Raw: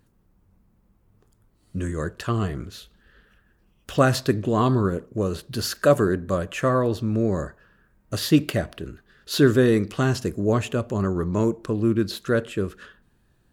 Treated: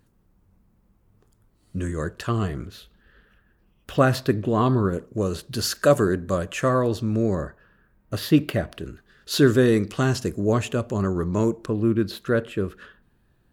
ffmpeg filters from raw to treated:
-af "asetnsamples=n=441:p=0,asendcmd='2.67 equalizer g -6.5;4.93 equalizer g 3.5;7.35 equalizer g -8;8.72 equalizer g 2;11.66 equalizer g -7',equalizer=f=7.1k:t=o:w=1.4:g=0"

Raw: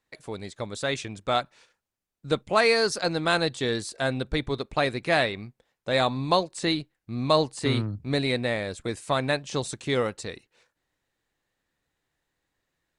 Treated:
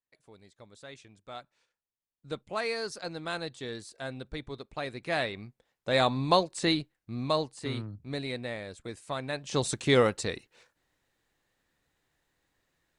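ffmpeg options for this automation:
-af "volume=11.5dB,afade=t=in:st=1.29:d=1.02:silence=0.421697,afade=t=in:st=4.82:d=1.28:silence=0.298538,afade=t=out:st=6.77:d=0.74:silence=0.375837,afade=t=in:st=9.32:d=0.41:silence=0.237137"

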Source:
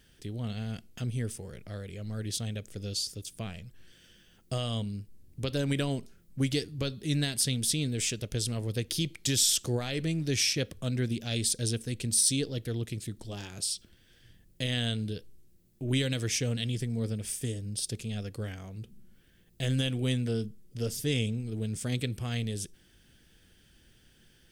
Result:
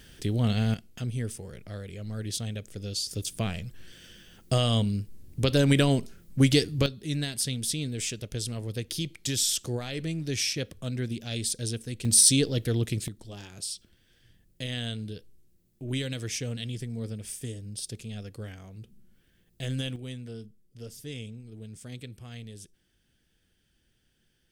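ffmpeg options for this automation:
-af "asetnsamples=n=441:p=0,asendcmd='0.74 volume volume 1dB;3.11 volume volume 8dB;6.86 volume volume -1.5dB;12.05 volume volume 6.5dB;13.08 volume volume -3dB;19.96 volume volume -10dB',volume=10dB"

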